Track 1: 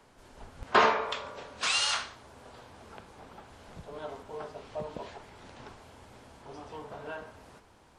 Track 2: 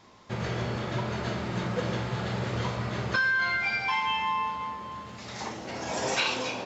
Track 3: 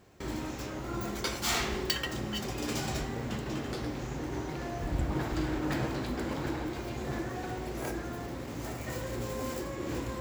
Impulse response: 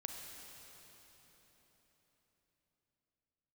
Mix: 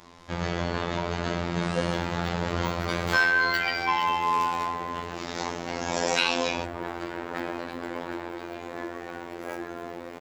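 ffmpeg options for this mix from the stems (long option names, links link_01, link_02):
-filter_complex "[0:a]acompressor=mode=upward:threshold=-33dB:ratio=2.5,volume=-18.5dB[link_01];[1:a]volume=-0.5dB[link_02];[2:a]bass=frequency=250:gain=-14,treble=frequency=4000:gain=-11,adelay=1650,volume=-4dB,asplit=2[link_03][link_04];[link_04]volume=-3.5dB[link_05];[3:a]atrim=start_sample=2205[link_06];[link_05][link_06]afir=irnorm=-1:irlink=0[link_07];[link_01][link_02][link_03][link_07]amix=inputs=4:normalize=0,afftfilt=real='hypot(re,im)*cos(PI*b)':imag='0':win_size=2048:overlap=0.75,acontrast=86"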